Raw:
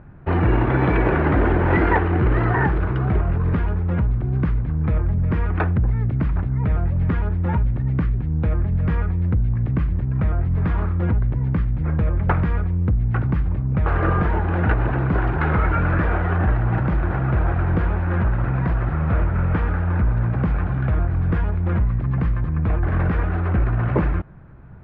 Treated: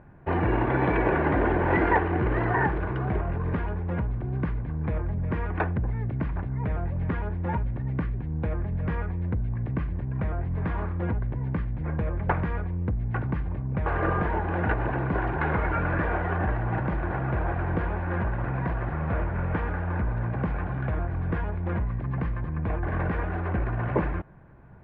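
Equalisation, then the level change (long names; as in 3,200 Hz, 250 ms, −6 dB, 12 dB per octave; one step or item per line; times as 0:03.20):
low-pass filter 1,900 Hz 6 dB per octave
low-shelf EQ 300 Hz −9.5 dB
notch filter 1,300 Hz, Q 7.2
0.0 dB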